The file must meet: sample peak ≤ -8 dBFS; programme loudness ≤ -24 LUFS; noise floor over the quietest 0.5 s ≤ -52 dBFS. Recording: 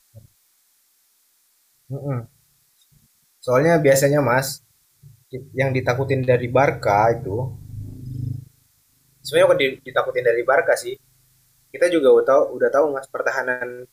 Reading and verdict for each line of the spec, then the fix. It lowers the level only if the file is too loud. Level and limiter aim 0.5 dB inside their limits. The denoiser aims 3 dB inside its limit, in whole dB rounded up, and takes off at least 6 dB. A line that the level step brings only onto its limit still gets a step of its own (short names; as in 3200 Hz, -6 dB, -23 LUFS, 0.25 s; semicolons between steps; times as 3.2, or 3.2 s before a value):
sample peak -5.5 dBFS: fail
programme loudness -19.5 LUFS: fail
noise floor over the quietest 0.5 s -62 dBFS: OK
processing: gain -5 dB